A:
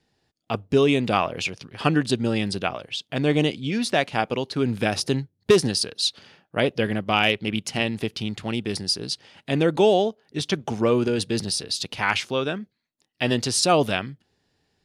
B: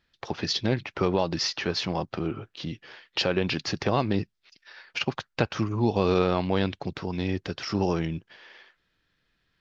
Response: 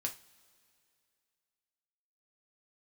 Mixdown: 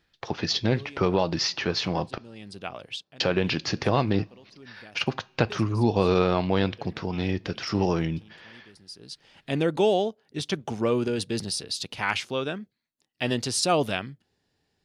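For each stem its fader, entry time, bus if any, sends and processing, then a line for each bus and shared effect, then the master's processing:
-4.0 dB, 0.00 s, no send, auto duck -22 dB, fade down 0.25 s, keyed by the second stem
-0.5 dB, 0.00 s, muted 2.18–3.2, send -11 dB, dry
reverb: on, pre-delay 3 ms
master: dry

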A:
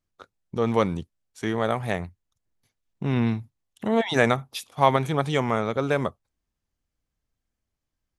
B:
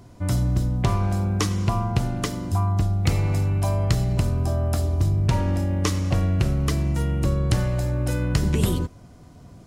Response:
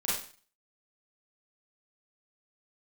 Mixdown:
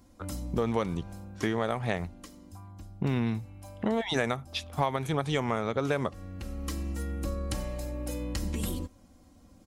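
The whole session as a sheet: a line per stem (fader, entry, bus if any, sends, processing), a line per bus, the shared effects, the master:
+2.5 dB, 0.00 s, no send, low-pass opened by the level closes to 1700 Hz, open at -18 dBFS
-12.0 dB, 0.00 s, no send, comb 3.7 ms, depth 94%; auto duck -12 dB, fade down 1.70 s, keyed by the first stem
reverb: off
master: high shelf 7200 Hz +6.5 dB; compressor 6:1, threshold -25 dBFS, peak gain reduction 15 dB

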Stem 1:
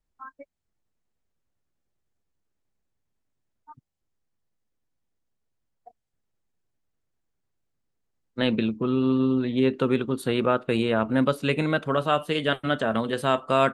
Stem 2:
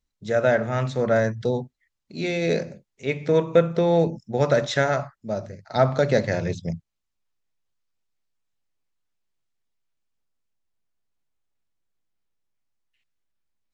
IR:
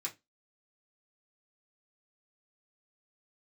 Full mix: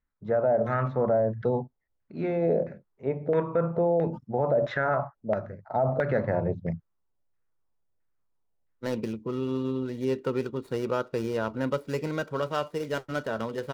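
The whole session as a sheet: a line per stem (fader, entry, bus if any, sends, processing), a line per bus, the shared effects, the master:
-5.5 dB, 0.45 s, no send, median filter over 15 samples; comb 2.1 ms, depth 33%
-2.5 dB, 0.00 s, no send, LFO low-pass saw down 1.5 Hz 580–1800 Hz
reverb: off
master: limiter -16 dBFS, peak gain reduction 11.5 dB

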